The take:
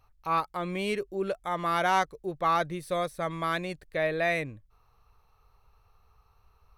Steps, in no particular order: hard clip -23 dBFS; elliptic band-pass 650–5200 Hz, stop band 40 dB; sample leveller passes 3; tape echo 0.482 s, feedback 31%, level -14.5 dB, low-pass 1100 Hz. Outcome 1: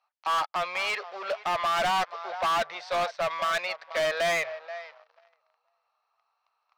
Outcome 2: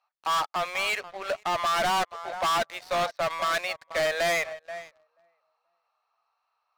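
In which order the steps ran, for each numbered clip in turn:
tape echo > sample leveller > elliptic band-pass > hard clip; elliptic band-pass > tape echo > sample leveller > hard clip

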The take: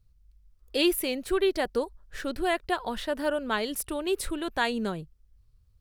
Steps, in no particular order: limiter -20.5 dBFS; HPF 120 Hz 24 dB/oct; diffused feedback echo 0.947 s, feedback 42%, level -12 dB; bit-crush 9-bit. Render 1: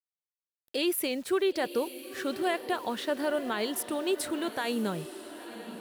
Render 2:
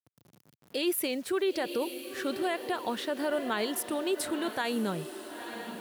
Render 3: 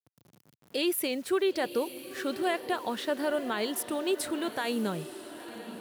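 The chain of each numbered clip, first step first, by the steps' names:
HPF > bit-crush > limiter > diffused feedback echo; diffused feedback echo > bit-crush > limiter > HPF; bit-crush > HPF > limiter > diffused feedback echo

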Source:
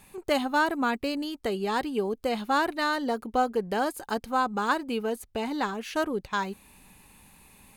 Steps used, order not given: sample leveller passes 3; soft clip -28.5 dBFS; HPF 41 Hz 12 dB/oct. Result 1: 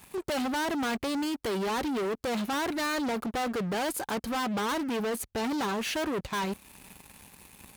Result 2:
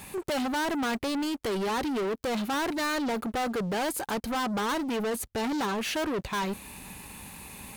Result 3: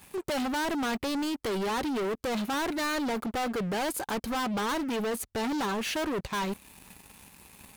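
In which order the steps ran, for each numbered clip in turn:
sample leveller > soft clip > HPF; soft clip > HPF > sample leveller; HPF > sample leveller > soft clip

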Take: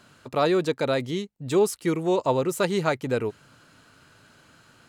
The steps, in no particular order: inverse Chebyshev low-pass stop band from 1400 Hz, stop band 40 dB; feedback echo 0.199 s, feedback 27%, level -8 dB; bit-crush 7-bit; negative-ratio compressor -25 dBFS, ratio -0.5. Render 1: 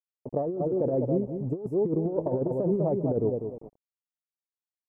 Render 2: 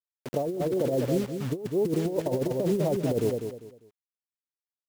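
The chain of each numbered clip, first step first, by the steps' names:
feedback echo > bit-crush > inverse Chebyshev low-pass > negative-ratio compressor; inverse Chebyshev low-pass > bit-crush > feedback echo > negative-ratio compressor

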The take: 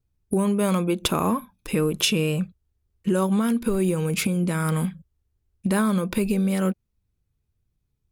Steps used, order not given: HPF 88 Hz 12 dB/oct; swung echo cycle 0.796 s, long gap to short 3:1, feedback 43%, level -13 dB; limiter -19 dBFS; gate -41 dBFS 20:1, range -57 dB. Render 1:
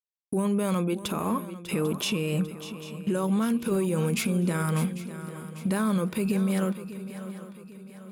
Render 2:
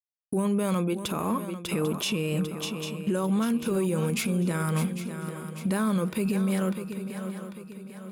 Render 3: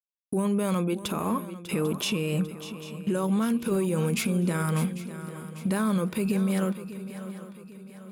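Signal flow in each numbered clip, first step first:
HPF > gate > limiter > swung echo; HPF > gate > swung echo > limiter; HPF > limiter > gate > swung echo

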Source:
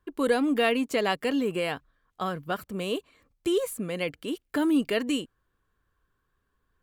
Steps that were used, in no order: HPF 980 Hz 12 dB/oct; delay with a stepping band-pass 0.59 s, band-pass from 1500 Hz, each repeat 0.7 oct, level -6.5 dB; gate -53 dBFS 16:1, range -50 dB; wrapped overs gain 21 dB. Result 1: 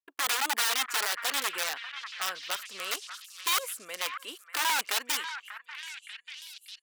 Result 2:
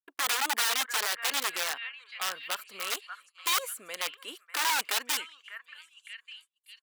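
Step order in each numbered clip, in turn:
wrapped overs > HPF > gate > delay with a stepping band-pass; delay with a stepping band-pass > wrapped overs > HPF > gate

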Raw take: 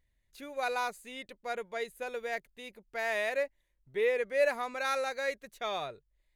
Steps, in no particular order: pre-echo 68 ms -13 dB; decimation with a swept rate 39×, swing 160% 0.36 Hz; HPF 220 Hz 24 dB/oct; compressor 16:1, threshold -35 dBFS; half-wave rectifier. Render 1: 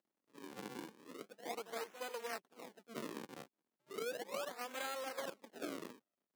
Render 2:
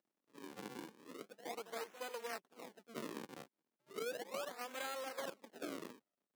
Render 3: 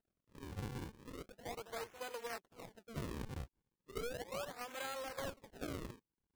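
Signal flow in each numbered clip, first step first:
half-wave rectifier > pre-echo > compressor > decimation with a swept rate > HPF; compressor > half-wave rectifier > pre-echo > decimation with a swept rate > HPF; compressor > pre-echo > half-wave rectifier > HPF > decimation with a swept rate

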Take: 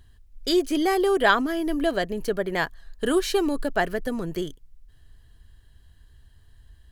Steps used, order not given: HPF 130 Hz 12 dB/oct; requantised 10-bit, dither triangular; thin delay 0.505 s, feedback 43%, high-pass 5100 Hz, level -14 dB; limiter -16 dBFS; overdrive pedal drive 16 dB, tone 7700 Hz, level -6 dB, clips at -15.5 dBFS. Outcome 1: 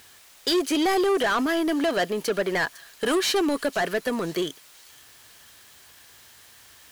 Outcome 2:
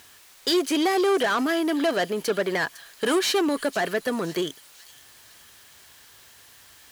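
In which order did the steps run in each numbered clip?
HPF > requantised > overdrive pedal > thin delay > limiter; thin delay > requantised > overdrive pedal > HPF > limiter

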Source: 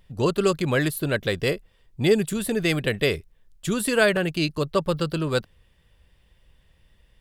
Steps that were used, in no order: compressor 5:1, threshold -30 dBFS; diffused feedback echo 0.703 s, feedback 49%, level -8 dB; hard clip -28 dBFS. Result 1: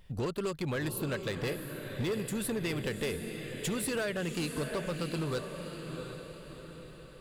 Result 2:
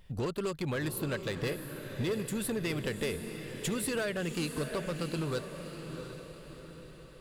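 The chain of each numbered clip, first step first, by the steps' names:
compressor > diffused feedback echo > hard clip; compressor > hard clip > diffused feedback echo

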